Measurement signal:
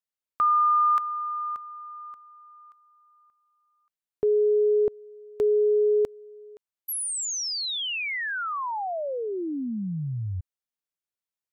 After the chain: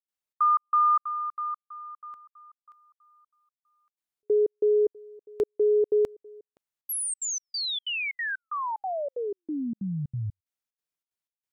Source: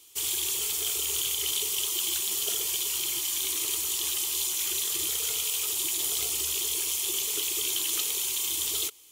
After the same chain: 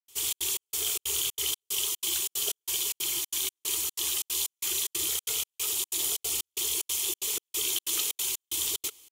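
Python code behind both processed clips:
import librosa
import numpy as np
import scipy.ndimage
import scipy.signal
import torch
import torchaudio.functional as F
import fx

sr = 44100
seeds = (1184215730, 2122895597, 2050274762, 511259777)

y = fx.step_gate(x, sr, bpm=185, pattern='.xxx.xx..xxx', floor_db=-60.0, edge_ms=4.5)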